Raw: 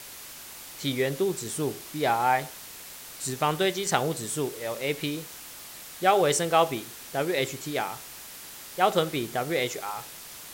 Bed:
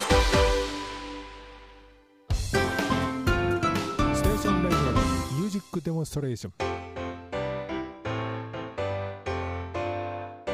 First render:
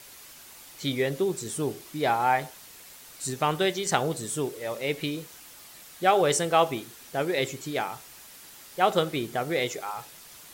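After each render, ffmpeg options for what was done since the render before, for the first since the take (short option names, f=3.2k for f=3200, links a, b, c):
-af "afftdn=nr=6:nf=-44"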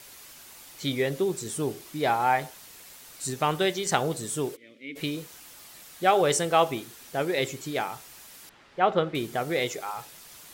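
-filter_complex "[0:a]asplit=3[a][b][c];[a]afade=t=out:st=4.55:d=0.02[d];[b]asplit=3[e][f][g];[e]bandpass=f=270:t=q:w=8,volume=0dB[h];[f]bandpass=f=2.29k:t=q:w=8,volume=-6dB[i];[g]bandpass=f=3.01k:t=q:w=8,volume=-9dB[j];[h][i][j]amix=inputs=3:normalize=0,afade=t=in:st=4.55:d=0.02,afade=t=out:st=4.95:d=0.02[k];[c]afade=t=in:st=4.95:d=0.02[l];[d][k][l]amix=inputs=3:normalize=0,asettb=1/sr,asplit=3[m][n][o];[m]atrim=end=8.494[p];[n]atrim=start=8.49:end=9.15,asetpts=PTS-STARTPTS,afade=t=in:d=0.004:c=qsin,afade=t=out:st=0.656:d=0.004:c=qsin,lowpass=2.5k[q];[o]atrim=start=9.146[r];[p][q]acrossfade=d=0.004:c1=hsin:c2=qsin[s];[s][r]acrossfade=d=0.004:c1=qsin:c2=hsin"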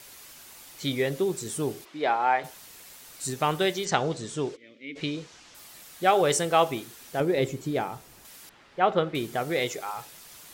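-filter_complex "[0:a]asplit=3[a][b][c];[a]afade=t=out:st=1.84:d=0.02[d];[b]highpass=310,lowpass=3.7k,afade=t=in:st=1.84:d=0.02,afade=t=out:st=2.43:d=0.02[e];[c]afade=t=in:st=2.43:d=0.02[f];[d][e][f]amix=inputs=3:normalize=0,asettb=1/sr,asplit=3[g][h][i];[g]atrim=end=3.854[j];[h]atrim=start=3.85:end=5.55,asetpts=PTS-STARTPTS,afade=t=in:d=0.004:c=qsin,afade=t=out:st=1.696:d=0.004:c=qsin,lowpass=f=6.7k:w=0.5412,lowpass=f=6.7k:w=1.3066[k];[i]atrim=start=5.546[l];[j][k]acrossfade=d=0.004:c1=hsin:c2=qsin[m];[m][l]acrossfade=d=0.004:c1=qsin:c2=hsin,asettb=1/sr,asplit=3[n][o][p];[n]atrim=end=7.204[q];[o]atrim=start=7.2:end=8.25,asetpts=PTS-STARTPTS,afade=t=in:d=0.004:c=qsin,afade=t=out:st=1.046:d=0.004:c=qsin,tiltshelf=f=790:g=6[r];[p]atrim=start=8.246[s];[q][r]acrossfade=d=0.004:c1=hsin:c2=qsin[t];[t][s]acrossfade=d=0.004:c1=qsin:c2=hsin"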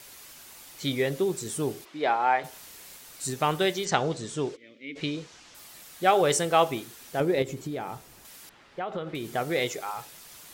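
-filter_complex "[0:a]asettb=1/sr,asplit=3[a][b][c];[a]atrim=end=2.494[d];[b]atrim=start=2.49:end=2.98,asetpts=PTS-STARTPTS,afade=t=in:d=0.004:c=qsin,afade=t=out:st=0.486:d=0.004:c=qsin,asplit=2[e][f];[f]adelay=36,volume=-5.5dB[g];[e][g]amix=inputs=2:normalize=0,atrim=end_sample=21609[h];[c]atrim=start=2.976[i];[d][h]acrossfade=d=0.004:c1=hsin:c2=qsin[j];[j][i]acrossfade=d=0.004:c1=qsin:c2=hsin,asettb=1/sr,asplit=3[k][l][m];[k]atrim=end=7.424[n];[l]atrim=start=7.42:end=9.29,asetpts=PTS-STARTPTS,afade=t=in:d=0.004:c=qsin,afade=t=out:st=1.866:d=0.004:c=qsin,acompressor=threshold=-29dB:ratio=6:attack=3.2:release=140:knee=1:detection=peak[o];[m]atrim=start=9.286[p];[n][o]acrossfade=d=0.004:c1=hsin:c2=qsin[q];[q][p]acrossfade=d=0.004:c1=qsin:c2=hsin"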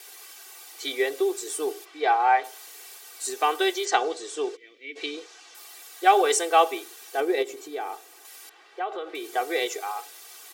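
-af "highpass=f=390:w=0.5412,highpass=f=390:w=1.3066,aecho=1:1:2.6:0.87"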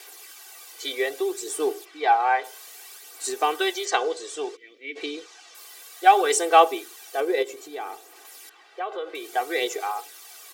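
-af "aphaser=in_gain=1:out_gain=1:delay=2:decay=0.36:speed=0.61:type=sinusoidal"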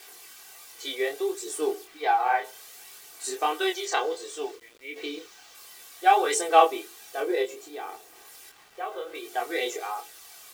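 -af "flanger=delay=22.5:depth=5.5:speed=1.4,acrusher=bits=8:mix=0:aa=0.000001"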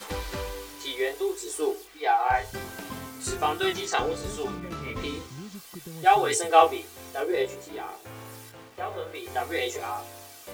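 -filter_complex "[1:a]volume=-12.5dB[a];[0:a][a]amix=inputs=2:normalize=0"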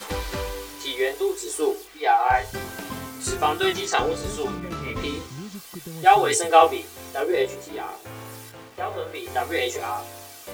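-af "volume=4dB,alimiter=limit=-2dB:level=0:latency=1"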